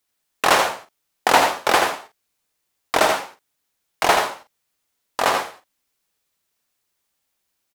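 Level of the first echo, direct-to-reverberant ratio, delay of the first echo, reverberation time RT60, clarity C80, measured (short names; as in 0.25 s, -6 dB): -7.0 dB, none, 80 ms, none, none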